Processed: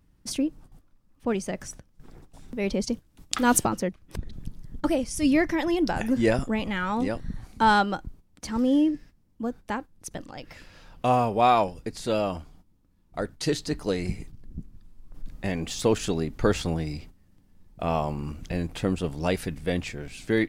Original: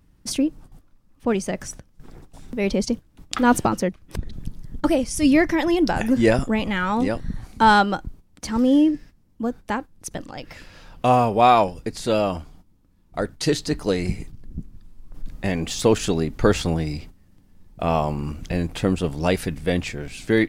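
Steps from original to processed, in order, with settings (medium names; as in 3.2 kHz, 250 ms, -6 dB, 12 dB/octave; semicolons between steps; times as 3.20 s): 2.83–3.63 s: peaking EQ 11 kHz +1.5 dB -> +13 dB 2.6 oct; trim -5 dB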